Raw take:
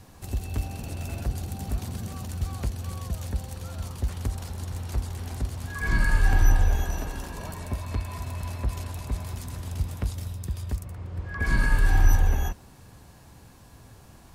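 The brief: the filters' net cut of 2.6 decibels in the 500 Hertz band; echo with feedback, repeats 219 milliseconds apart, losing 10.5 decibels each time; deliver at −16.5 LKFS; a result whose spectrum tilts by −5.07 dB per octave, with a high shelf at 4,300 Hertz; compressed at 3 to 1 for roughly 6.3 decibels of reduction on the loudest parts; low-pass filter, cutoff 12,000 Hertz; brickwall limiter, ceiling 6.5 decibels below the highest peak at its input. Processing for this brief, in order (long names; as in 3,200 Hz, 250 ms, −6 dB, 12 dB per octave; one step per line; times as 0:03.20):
low-pass filter 12,000 Hz
parametric band 500 Hz −3.5 dB
high-shelf EQ 4,300 Hz +3.5 dB
downward compressor 3 to 1, threshold −22 dBFS
brickwall limiter −21.5 dBFS
repeating echo 219 ms, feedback 30%, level −10.5 dB
level +17 dB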